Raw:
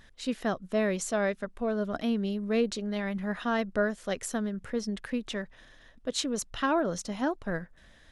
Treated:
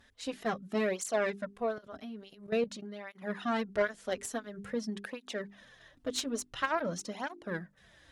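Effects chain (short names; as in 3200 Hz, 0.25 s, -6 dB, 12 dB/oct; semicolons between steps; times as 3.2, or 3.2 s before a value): recorder AGC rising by 8.2 dB/s; low shelf 84 Hz -6 dB; notches 50/100/150/200/250/300/350/400 Hz; 1.78–3.22 level quantiser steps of 13 dB; added harmonics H 2 -7 dB, 4 -21 dB, 7 -31 dB, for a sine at -16.5 dBFS; tape flanging out of phase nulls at 0.48 Hz, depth 6.4 ms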